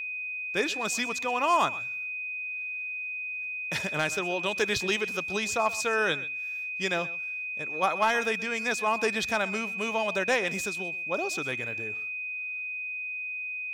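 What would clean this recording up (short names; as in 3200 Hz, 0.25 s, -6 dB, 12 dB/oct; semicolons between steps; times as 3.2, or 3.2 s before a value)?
clip repair -15.5 dBFS; notch 2500 Hz, Q 30; inverse comb 0.127 s -18.5 dB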